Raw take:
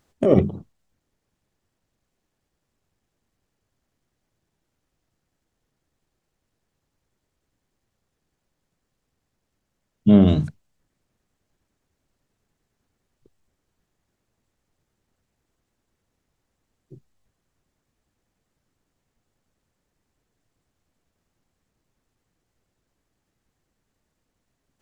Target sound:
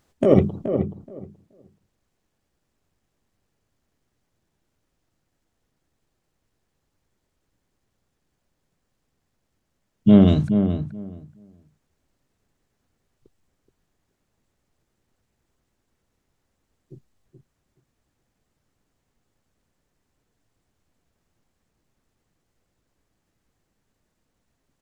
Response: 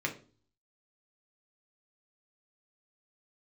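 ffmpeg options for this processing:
-filter_complex "[0:a]asplit=2[a][b];[b]adelay=426,lowpass=f=1.4k:p=1,volume=-7.5dB,asplit=2[c][d];[d]adelay=426,lowpass=f=1.4k:p=1,volume=0.17,asplit=2[e][f];[f]adelay=426,lowpass=f=1.4k:p=1,volume=0.17[g];[a][c][e][g]amix=inputs=4:normalize=0,volume=1dB"

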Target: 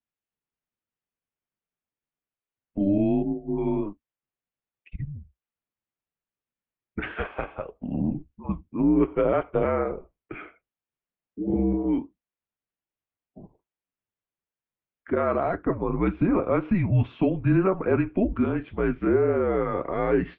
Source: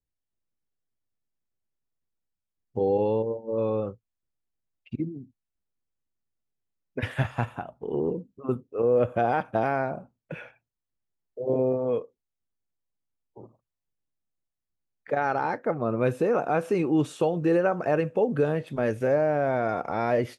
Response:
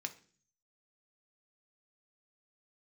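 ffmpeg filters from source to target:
-af "highpass=f=240:t=q:w=0.5412,highpass=f=240:t=q:w=1.307,lowpass=f=3.3k:t=q:w=0.5176,lowpass=f=3.3k:t=q:w=0.7071,lowpass=f=3.3k:t=q:w=1.932,afreqshift=-190,flanger=delay=4.2:depth=5.6:regen=-56:speed=1.8:shape=sinusoidal,volume=6dB"

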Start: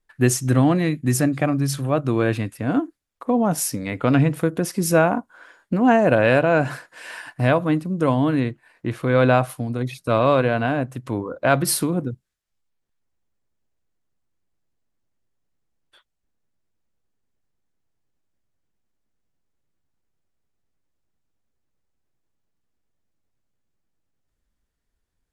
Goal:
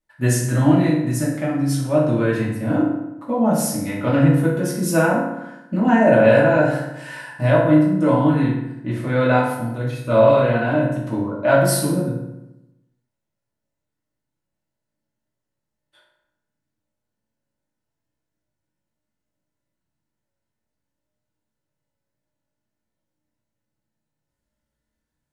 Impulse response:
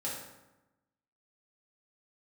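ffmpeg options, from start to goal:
-filter_complex "[0:a]asettb=1/sr,asplit=3[a][b][c];[a]atrim=end=0.904[d];[b]atrim=start=0.9:end=1.71,asetpts=PTS-STARTPTS,afade=t=in:d=0.004:c=qsin,afade=t=out:st=0.806:d=0.004:c=qsin,acompressor=threshold=-21dB:ratio=3[e];[c]atrim=start=1.706[f];[d][e]acrossfade=d=0.004:c1=hsin:c2=qsin[g];[g][f]acrossfade=d=0.004:c1=qsin:c2=hsin[h];[1:a]atrim=start_sample=2205,asetrate=48510,aresample=44100[i];[h][i]afir=irnorm=-1:irlink=0,volume=-1.5dB"

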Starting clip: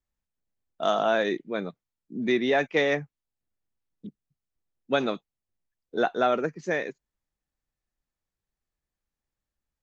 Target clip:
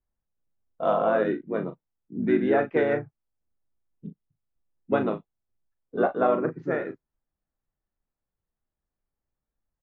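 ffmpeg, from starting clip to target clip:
-filter_complex "[0:a]lowpass=1.4k,asplit=2[a][b];[b]asetrate=35002,aresample=44100,atempo=1.25992,volume=-4dB[c];[a][c]amix=inputs=2:normalize=0,asplit=2[d][e];[e]adelay=37,volume=-9.5dB[f];[d][f]amix=inputs=2:normalize=0"

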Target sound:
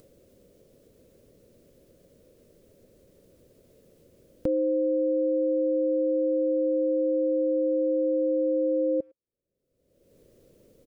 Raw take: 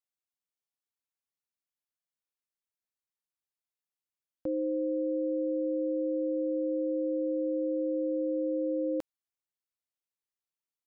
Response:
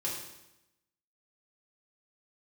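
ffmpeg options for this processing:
-filter_complex "[0:a]firequalizer=gain_entry='entry(300,0);entry(540,5);entry(790,-26)':delay=0.05:min_phase=1,acompressor=mode=upward:threshold=-25dB:ratio=2.5,asplit=2[a][b];[b]adelay=110,highpass=300,lowpass=3.4k,asoftclip=type=hard:threshold=-24dB,volume=-29dB[c];[a][c]amix=inputs=2:normalize=0,volume=2.5dB"

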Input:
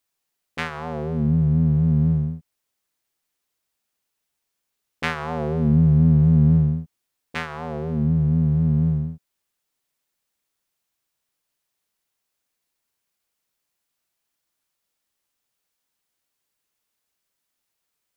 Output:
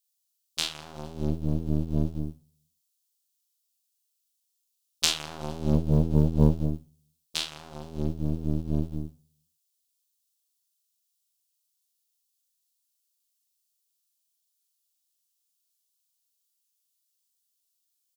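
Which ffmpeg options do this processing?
-filter_complex "[0:a]asplit=2[a][b];[b]adelay=40,volume=-3.5dB[c];[a][c]amix=inputs=2:normalize=0,asplit=2[d][e];[e]adelay=184,lowpass=f=2k:p=1,volume=-23dB,asplit=2[f][g];[g]adelay=184,lowpass=f=2k:p=1,volume=0.32[h];[f][h]amix=inputs=2:normalize=0[i];[d][i]amix=inputs=2:normalize=0,aeval=exprs='0.668*(cos(1*acos(clip(val(0)/0.668,-1,1)))-cos(1*PI/2))+0.188*(cos(3*acos(clip(val(0)/0.668,-1,1)))-cos(3*PI/2))+0.0531*(cos(6*acos(clip(val(0)/0.668,-1,1)))-cos(6*PI/2))':c=same,aexciter=amount=7.9:drive=6.1:freq=2.9k,volume=-5dB"

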